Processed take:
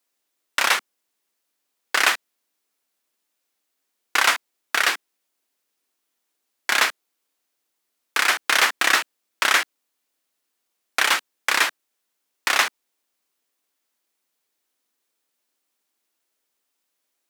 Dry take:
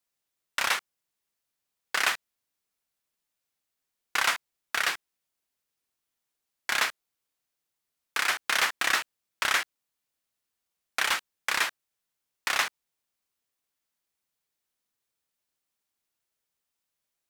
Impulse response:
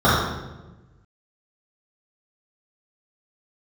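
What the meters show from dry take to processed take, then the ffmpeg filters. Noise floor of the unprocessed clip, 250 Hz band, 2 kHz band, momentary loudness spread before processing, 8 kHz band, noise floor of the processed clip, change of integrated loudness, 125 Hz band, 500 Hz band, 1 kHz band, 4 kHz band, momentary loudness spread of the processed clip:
-85 dBFS, +8.5 dB, +7.0 dB, 10 LU, +7.0 dB, -77 dBFS, +7.0 dB, n/a, +8.0 dB, +7.5 dB, +7.0 dB, 10 LU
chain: -af "lowshelf=f=190:t=q:w=1.5:g=-11,volume=7dB"

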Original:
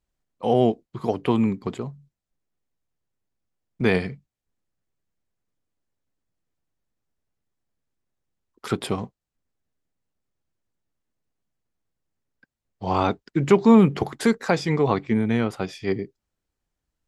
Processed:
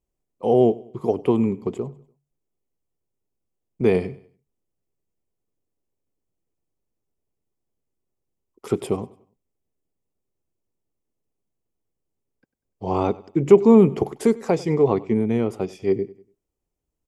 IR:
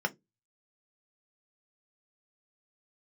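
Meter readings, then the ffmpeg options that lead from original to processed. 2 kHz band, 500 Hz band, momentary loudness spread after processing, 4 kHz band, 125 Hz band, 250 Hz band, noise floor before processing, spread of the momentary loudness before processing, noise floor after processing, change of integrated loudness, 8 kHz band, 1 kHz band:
-8.0 dB, +4.5 dB, 14 LU, -8.0 dB, -0.5 dB, +0.5 dB, under -85 dBFS, 16 LU, -81 dBFS, +2.0 dB, -2.5 dB, -2.5 dB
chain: -af "equalizer=f=400:t=o:w=0.67:g=7,equalizer=f=1.6k:t=o:w=0.67:g=-11,equalizer=f=4k:t=o:w=0.67:g=-10,aecho=1:1:97|194|291:0.0891|0.0357|0.0143,volume=-1dB"

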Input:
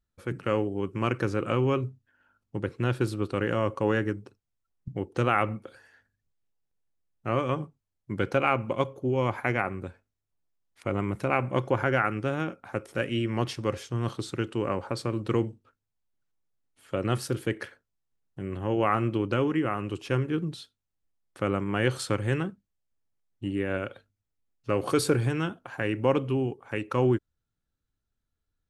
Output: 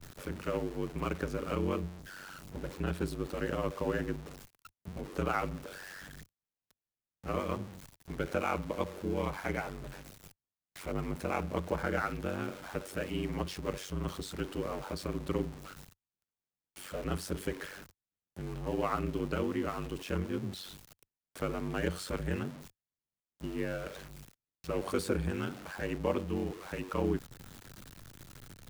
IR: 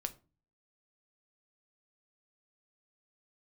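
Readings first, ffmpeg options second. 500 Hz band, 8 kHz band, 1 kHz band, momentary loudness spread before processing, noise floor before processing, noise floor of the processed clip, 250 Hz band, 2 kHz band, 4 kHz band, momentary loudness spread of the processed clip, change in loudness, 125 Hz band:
-7.0 dB, -4.0 dB, -7.5 dB, 11 LU, -83 dBFS, under -85 dBFS, -6.5 dB, -8.0 dB, -6.0 dB, 18 LU, -7.5 dB, -8.5 dB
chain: -filter_complex "[0:a]aeval=exprs='val(0)+0.5*0.0211*sgn(val(0))':c=same,highpass=f=41:w=0.5412,highpass=f=41:w=1.3066,aeval=exprs='val(0)*sin(2*PI*47*n/s)':c=same,acrossover=split=390|1700[a][b][c];[c]asoftclip=type=hard:threshold=-32.5dB[d];[a][b][d]amix=inputs=3:normalize=0,volume=-5.5dB"

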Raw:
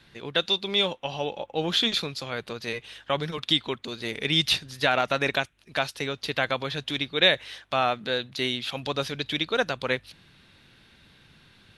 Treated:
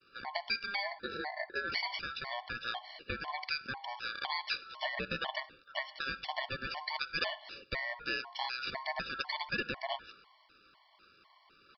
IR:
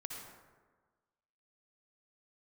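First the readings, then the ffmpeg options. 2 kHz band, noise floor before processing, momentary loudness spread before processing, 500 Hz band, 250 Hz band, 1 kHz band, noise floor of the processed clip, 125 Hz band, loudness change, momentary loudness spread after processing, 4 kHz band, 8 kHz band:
-7.0 dB, -58 dBFS, 10 LU, -15.5 dB, -16.5 dB, -8.0 dB, -66 dBFS, -16.0 dB, -11.0 dB, 6 LU, -13.5 dB, under -20 dB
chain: -filter_complex "[0:a]agate=range=-33dB:threshold=-52dB:ratio=3:detection=peak,bandreject=f=50:t=h:w=6,bandreject=f=100:t=h:w=6,bandreject=f=150:t=h:w=6,bandreject=f=200:t=h:w=6,bandreject=f=250:t=h:w=6,bandreject=f=300:t=h:w=6,bandreject=f=350:t=h:w=6,bandreject=f=400:t=h:w=6,bandreject=f=450:t=h:w=6,acompressor=threshold=-28dB:ratio=5,asplit=2[a][b];[1:a]atrim=start_sample=2205,afade=t=out:st=0.25:d=0.01,atrim=end_sample=11466[c];[b][c]afir=irnorm=-1:irlink=0,volume=-10.5dB[d];[a][d]amix=inputs=2:normalize=0,aeval=exprs='val(0)*sin(2*PI*1200*n/s)':c=same,aresample=11025,aresample=44100,afftfilt=real='re*gt(sin(2*PI*2*pts/sr)*(1-2*mod(floor(b*sr/1024/580),2)),0)':imag='im*gt(sin(2*PI*2*pts/sr)*(1-2*mod(floor(b*sr/1024/580),2)),0)':win_size=1024:overlap=0.75"

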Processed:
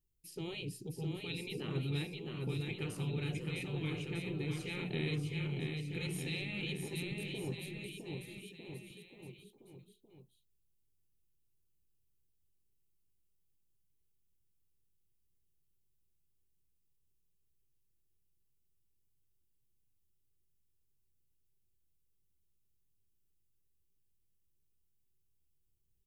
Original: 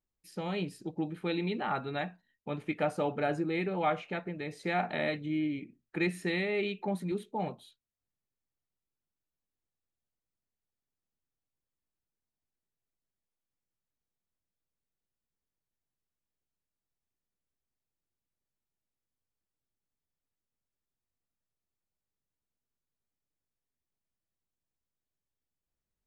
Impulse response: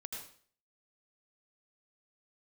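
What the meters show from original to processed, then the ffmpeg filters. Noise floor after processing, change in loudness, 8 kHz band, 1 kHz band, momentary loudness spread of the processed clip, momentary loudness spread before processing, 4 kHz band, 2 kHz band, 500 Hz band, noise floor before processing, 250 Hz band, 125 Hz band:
-76 dBFS, -6.0 dB, +5.0 dB, -19.0 dB, 14 LU, 9 LU, +1.0 dB, -6.0 dB, -9.5 dB, under -85 dBFS, -6.0 dB, +3.0 dB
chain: -filter_complex "[0:a]afftfilt=real='re*lt(hypot(re,im),0.1)':imag='im*lt(hypot(re,im),0.1)':win_size=1024:overlap=0.75,firequalizer=gain_entry='entry(140,0);entry(230,-11);entry(390,-4);entry(620,-24);entry(920,-22);entry(1600,-25);entry(2700,-8);entry(3900,-11);entry(12000,-2)':delay=0.05:min_phase=1,asplit=2[a][b];[b]aecho=0:1:660|1254|1789|2270|2703:0.631|0.398|0.251|0.158|0.1[c];[a][c]amix=inputs=2:normalize=0,volume=8.5dB"

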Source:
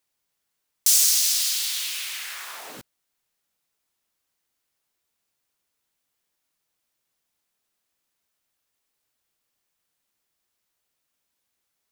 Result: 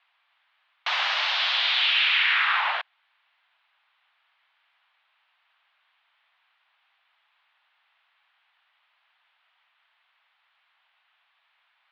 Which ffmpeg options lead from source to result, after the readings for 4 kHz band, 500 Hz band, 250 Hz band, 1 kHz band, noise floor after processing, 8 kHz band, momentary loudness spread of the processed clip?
+4.0 dB, +8.5 dB, under -20 dB, +17.0 dB, -71 dBFS, under -30 dB, 9 LU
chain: -filter_complex "[0:a]asplit=2[a][b];[b]highpass=f=720:p=1,volume=24dB,asoftclip=type=tanh:threshold=-4.5dB[c];[a][c]amix=inputs=2:normalize=0,lowpass=f=2.7k:p=1,volume=-6dB,highpass=f=570:t=q:w=0.5412,highpass=f=570:t=q:w=1.307,lowpass=f=3.4k:t=q:w=0.5176,lowpass=f=3.4k:t=q:w=0.7071,lowpass=f=3.4k:t=q:w=1.932,afreqshift=160,volume=2dB"

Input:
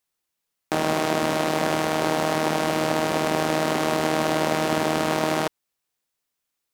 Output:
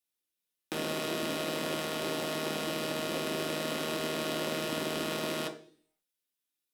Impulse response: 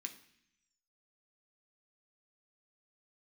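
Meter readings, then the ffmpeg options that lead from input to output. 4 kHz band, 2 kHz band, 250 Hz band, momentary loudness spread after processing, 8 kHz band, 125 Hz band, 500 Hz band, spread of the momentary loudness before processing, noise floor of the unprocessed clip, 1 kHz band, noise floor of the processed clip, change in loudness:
-5.0 dB, -9.5 dB, -10.5 dB, 2 LU, -7.5 dB, -11.5 dB, -10.5 dB, 2 LU, -81 dBFS, -14.5 dB, under -85 dBFS, -10.0 dB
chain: -filter_complex "[1:a]atrim=start_sample=2205,asetrate=66150,aresample=44100[a];[0:a][a]afir=irnorm=-1:irlink=0"

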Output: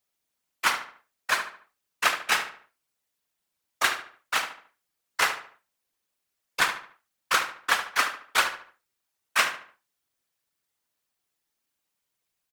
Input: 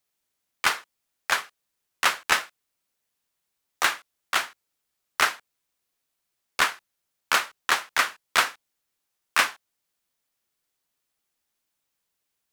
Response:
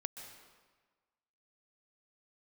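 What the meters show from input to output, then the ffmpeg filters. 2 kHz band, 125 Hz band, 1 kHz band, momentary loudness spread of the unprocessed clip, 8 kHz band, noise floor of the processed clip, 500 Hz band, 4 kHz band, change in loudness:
-1.0 dB, n/a, -1.0 dB, 12 LU, -1.5 dB, -82 dBFS, -1.0 dB, -1.5 dB, -1.5 dB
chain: -filter_complex "[0:a]afftfilt=real='hypot(re,im)*cos(2*PI*random(0))':imag='hypot(re,im)*sin(2*PI*random(1))':win_size=512:overlap=0.75,asplit=2[a][b];[b]adelay=73,lowpass=f=3.2k:p=1,volume=-9dB,asplit=2[c][d];[d]adelay=73,lowpass=f=3.2k:p=1,volume=0.39,asplit=2[e][f];[f]adelay=73,lowpass=f=3.2k:p=1,volume=0.39,asplit=2[g][h];[h]adelay=73,lowpass=f=3.2k:p=1,volume=0.39[i];[a][c][e][g][i]amix=inputs=5:normalize=0,volume=4.5dB"

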